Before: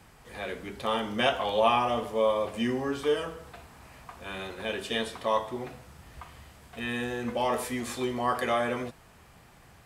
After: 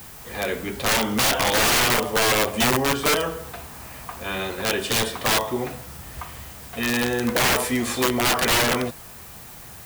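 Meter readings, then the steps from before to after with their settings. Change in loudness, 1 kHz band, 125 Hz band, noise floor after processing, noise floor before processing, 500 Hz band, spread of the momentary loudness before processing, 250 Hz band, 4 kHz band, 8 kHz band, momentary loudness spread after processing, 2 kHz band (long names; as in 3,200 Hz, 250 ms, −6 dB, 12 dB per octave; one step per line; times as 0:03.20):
+8.5 dB, +4.5 dB, +10.5 dB, −42 dBFS, −55 dBFS, +3.5 dB, 21 LU, +7.0 dB, +12.5 dB, +21.0 dB, 18 LU, +12.0 dB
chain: harmonic generator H 5 −17 dB, 6 −18 dB, 7 −38 dB, 8 −23 dB, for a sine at −11 dBFS
background noise blue −49 dBFS
wrap-around overflow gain 20 dB
level +5.5 dB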